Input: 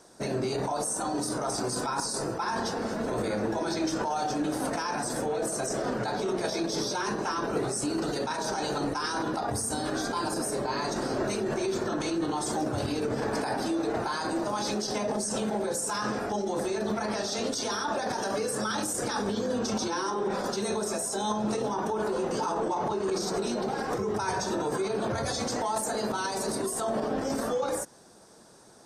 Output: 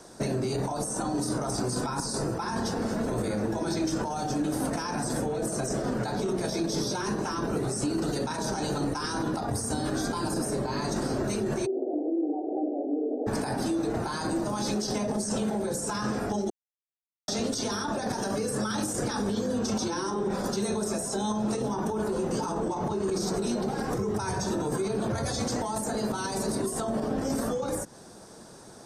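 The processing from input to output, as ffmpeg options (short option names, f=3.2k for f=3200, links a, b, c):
-filter_complex "[0:a]asplit=3[a][b][c];[a]afade=t=out:st=11.65:d=0.02[d];[b]asuperpass=centerf=450:order=20:qfactor=0.86,afade=t=in:st=11.65:d=0.02,afade=t=out:st=13.26:d=0.02[e];[c]afade=t=in:st=13.26:d=0.02[f];[d][e][f]amix=inputs=3:normalize=0,asplit=3[g][h][i];[g]atrim=end=16.5,asetpts=PTS-STARTPTS,afade=t=out:st=16.496:d=0.004:c=hsin[j];[h]atrim=start=16.5:end=17.28,asetpts=PTS-STARTPTS,volume=0[k];[i]atrim=start=17.28,asetpts=PTS-STARTPTS,afade=t=in:d=0.004:c=hsin[l];[j][k][l]concat=n=3:v=0:a=1,lowshelf=f=260:g=5.5,acrossover=split=280|6900[m][n][o];[m]acompressor=threshold=-35dB:ratio=4[p];[n]acompressor=threshold=-37dB:ratio=4[q];[o]acompressor=threshold=-44dB:ratio=4[r];[p][q][r]amix=inputs=3:normalize=0,volume=5dB"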